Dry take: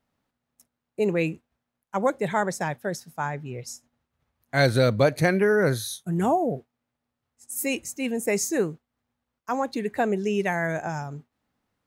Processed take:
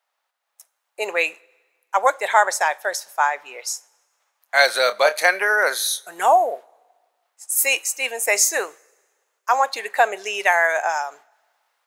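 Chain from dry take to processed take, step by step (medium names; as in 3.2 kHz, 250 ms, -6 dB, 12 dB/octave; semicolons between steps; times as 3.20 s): 4.82–5.23 s: doubling 28 ms -11 dB; reverberation, pre-delay 3 ms, DRR 18.5 dB; level rider gain up to 7 dB; high-pass 670 Hz 24 dB/octave; trim +4.5 dB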